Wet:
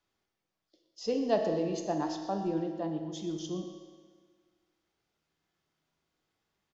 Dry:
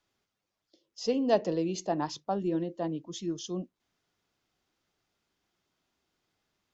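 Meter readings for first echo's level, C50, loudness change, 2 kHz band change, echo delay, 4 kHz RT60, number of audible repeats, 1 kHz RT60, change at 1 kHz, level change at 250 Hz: -14.0 dB, 5.5 dB, -1.5 dB, -2.0 dB, 121 ms, 1.5 s, 1, 1.6 s, -1.5 dB, -1.5 dB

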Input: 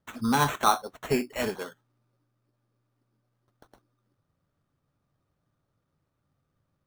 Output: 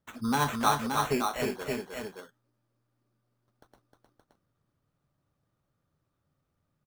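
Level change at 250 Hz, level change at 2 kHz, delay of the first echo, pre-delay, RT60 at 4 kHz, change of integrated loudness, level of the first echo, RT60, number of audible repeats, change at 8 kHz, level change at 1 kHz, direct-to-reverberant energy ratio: -1.5 dB, -1.5 dB, 309 ms, no reverb, no reverb, -2.5 dB, -4.5 dB, no reverb, 2, -1.5 dB, -1.5 dB, no reverb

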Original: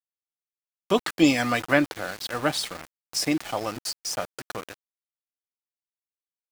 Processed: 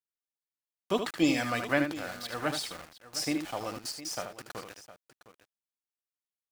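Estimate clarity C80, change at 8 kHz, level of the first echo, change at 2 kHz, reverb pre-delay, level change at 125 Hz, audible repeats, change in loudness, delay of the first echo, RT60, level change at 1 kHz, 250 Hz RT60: no reverb, -6.0 dB, -7.5 dB, -6.0 dB, no reverb, -6.0 dB, 2, -6.0 dB, 76 ms, no reverb, -6.0 dB, no reverb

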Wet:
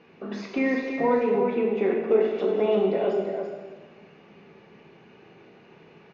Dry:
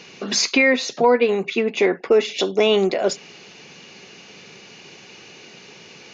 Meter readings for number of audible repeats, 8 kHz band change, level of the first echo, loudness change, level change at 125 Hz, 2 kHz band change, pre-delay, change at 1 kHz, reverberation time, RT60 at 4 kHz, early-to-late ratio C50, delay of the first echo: 1, no reading, -6.5 dB, -6.0 dB, no reading, -12.0 dB, 7 ms, -5.5 dB, 1.3 s, 1.2 s, 0.5 dB, 337 ms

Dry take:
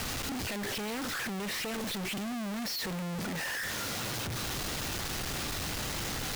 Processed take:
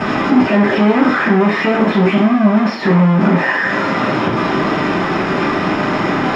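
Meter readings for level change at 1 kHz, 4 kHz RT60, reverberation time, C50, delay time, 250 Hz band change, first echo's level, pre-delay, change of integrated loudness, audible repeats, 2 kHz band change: +23.5 dB, 0.65 s, 0.45 s, 6.0 dB, no echo, +25.0 dB, no echo, 3 ms, +20.0 dB, no echo, +19.0 dB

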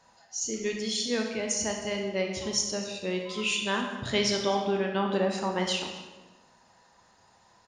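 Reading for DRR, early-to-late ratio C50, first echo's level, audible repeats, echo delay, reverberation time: 2.0 dB, 4.0 dB, -18.5 dB, 1, 253 ms, 1.2 s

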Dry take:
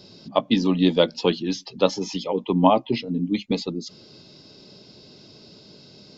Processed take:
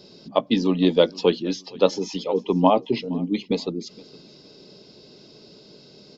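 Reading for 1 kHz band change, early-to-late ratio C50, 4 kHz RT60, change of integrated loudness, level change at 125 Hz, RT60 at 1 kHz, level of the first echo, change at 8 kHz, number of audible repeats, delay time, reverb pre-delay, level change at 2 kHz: -1.0 dB, no reverb, no reverb, +0.5 dB, -1.5 dB, no reverb, -23.0 dB, no reading, 2, 466 ms, no reverb, -1.5 dB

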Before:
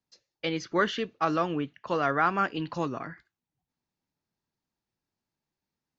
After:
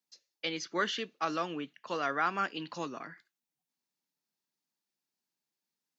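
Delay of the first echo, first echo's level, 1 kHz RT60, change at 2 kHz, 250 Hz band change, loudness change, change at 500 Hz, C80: no echo, no echo, no reverb, -4.0 dB, -8.0 dB, -5.5 dB, -7.5 dB, no reverb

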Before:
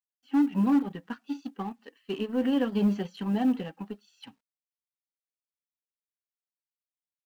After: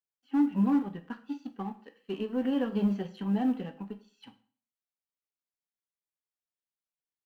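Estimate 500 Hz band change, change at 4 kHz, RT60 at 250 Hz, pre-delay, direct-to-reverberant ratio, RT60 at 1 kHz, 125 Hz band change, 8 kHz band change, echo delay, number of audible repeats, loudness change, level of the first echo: -2.5 dB, -5.5 dB, 0.45 s, 6 ms, 8.5 dB, 0.45 s, -1.0 dB, no reading, no echo, no echo, -2.0 dB, no echo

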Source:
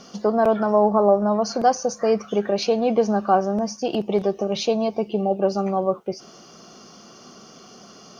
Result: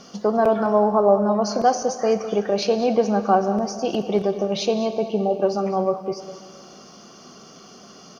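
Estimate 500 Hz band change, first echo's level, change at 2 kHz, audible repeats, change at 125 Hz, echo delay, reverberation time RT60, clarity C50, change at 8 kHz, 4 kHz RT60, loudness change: +0.5 dB, -14.0 dB, +0.5 dB, 1, 0.0 dB, 203 ms, 2.3 s, 9.5 dB, no reading, 2.2 s, +0.5 dB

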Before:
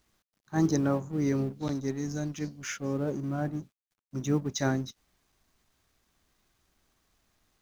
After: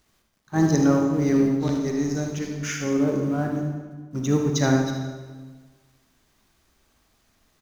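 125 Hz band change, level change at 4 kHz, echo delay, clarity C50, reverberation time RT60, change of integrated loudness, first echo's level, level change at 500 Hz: +7.0 dB, +7.0 dB, 76 ms, 2.5 dB, 1.4 s, +7.5 dB, -8.5 dB, +8.0 dB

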